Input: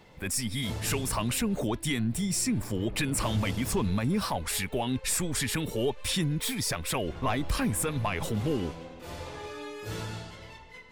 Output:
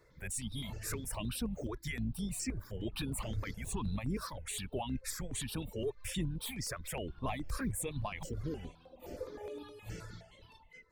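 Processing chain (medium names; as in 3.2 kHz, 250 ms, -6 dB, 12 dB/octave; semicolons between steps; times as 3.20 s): octave divider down 2 oct, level -5 dB; reverb removal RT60 0.93 s; 8.92–9.63 s: ten-band graphic EQ 125 Hz -9 dB, 250 Hz +8 dB, 500 Hz +11 dB, 2 kHz -6 dB, 8 kHz -7 dB, 16 kHz +12 dB; stepped phaser 9.6 Hz 810–6900 Hz; trim -6.5 dB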